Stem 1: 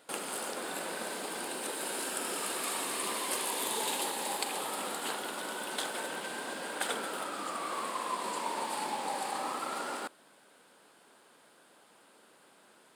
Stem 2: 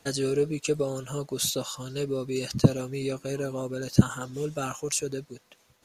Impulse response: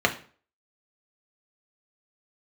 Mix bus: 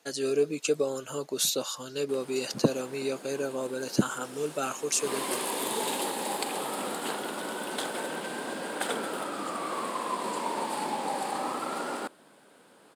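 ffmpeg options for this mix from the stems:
-filter_complex "[0:a]tiltshelf=f=640:g=4,adelay=2000,volume=-1dB,afade=t=in:st=4.93:d=0.25:silence=0.237137[a];[1:a]highpass=290,volume=-4.5dB[b];[a][b]amix=inputs=2:normalize=0,dynaudnorm=f=140:g=3:m=5.5dB"

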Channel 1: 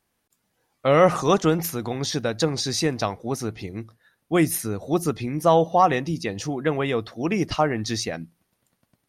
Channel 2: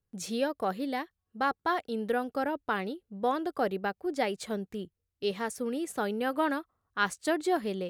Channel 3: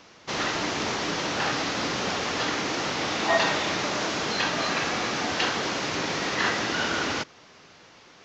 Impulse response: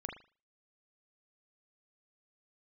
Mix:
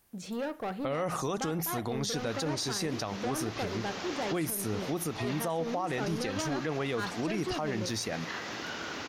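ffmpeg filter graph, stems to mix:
-filter_complex "[0:a]highshelf=f=10k:g=11.5,volume=2.5dB[a];[1:a]deesser=0.75,aemphasis=mode=reproduction:type=50fm,asoftclip=type=tanh:threshold=-31dB,volume=-1.5dB,asplit=2[b][c];[c]volume=-8.5dB[d];[2:a]acompressor=threshold=-32dB:ratio=2,adelay=1900,volume=-4dB[e];[a][e]amix=inputs=2:normalize=0,acompressor=threshold=-39dB:ratio=1.5,volume=0dB[f];[3:a]atrim=start_sample=2205[g];[d][g]afir=irnorm=-1:irlink=0[h];[b][f][h]amix=inputs=3:normalize=0,alimiter=limit=-23.5dB:level=0:latency=1:release=64"

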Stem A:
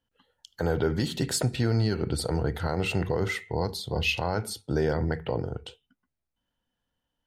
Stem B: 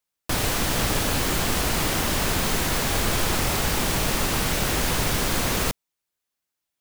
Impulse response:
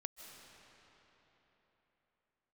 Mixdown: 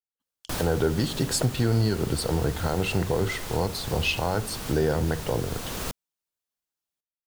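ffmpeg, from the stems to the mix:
-filter_complex "[0:a]agate=range=-35dB:threshold=-57dB:ratio=16:detection=peak,volume=2dB,asplit=2[a][b];[1:a]adelay=200,volume=-6dB[c];[b]apad=whole_len=308872[d];[c][d]sidechaincompress=threshold=-27dB:ratio=8:attack=24:release=919[e];[a][e]amix=inputs=2:normalize=0,equalizer=f=2.1k:t=o:w=0.64:g=-3.5"

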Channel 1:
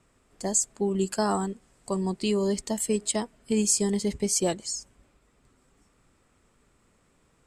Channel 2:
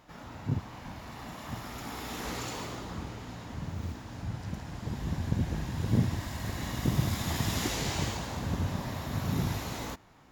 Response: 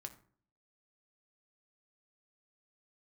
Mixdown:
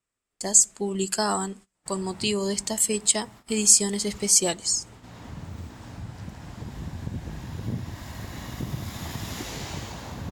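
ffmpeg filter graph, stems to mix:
-filter_complex "[0:a]tiltshelf=f=1.3k:g=-5.5,volume=1dB,asplit=3[a][b][c];[b]volume=-6.5dB[d];[1:a]acompressor=threshold=-44dB:ratio=1.5,adelay=1750,volume=2.5dB,asplit=2[e][f];[f]volume=-22.5dB[g];[c]apad=whole_len=531880[h];[e][h]sidechaincompress=threshold=-31dB:ratio=10:attack=8.7:release=682[i];[2:a]atrim=start_sample=2205[j];[d][g]amix=inputs=2:normalize=0[k];[k][j]afir=irnorm=-1:irlink=0[l];[a][i][l]amix=inputs=3:normalize=0,agate=range=-23dB:threshold=-45dB:ratio=16:detection=peak"

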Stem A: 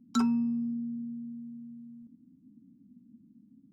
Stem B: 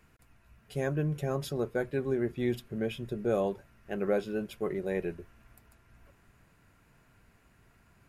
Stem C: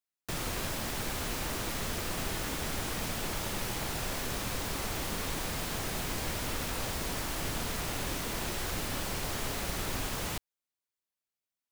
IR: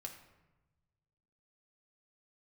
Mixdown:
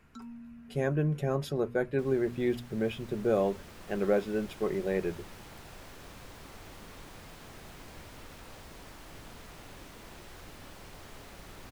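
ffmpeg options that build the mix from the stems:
-filter_complex "[0:a]volume=-17.5dB[a];[1:a]volume=2dB[b];[2:a]dynaudnorm=f=450:g=7:m=5.5dB,adelay=1700,volume=-18dB[c];[a][b][c]amix=inputs=3:normalize=0,highshelf=f=4.7k:g=-7,bandreject=f=60:t=h:w=6,bandreject=f=120:t=h:w=6,bandreject=f=180:t=h:w=6,bandreject=f=240:t=h:w=6"

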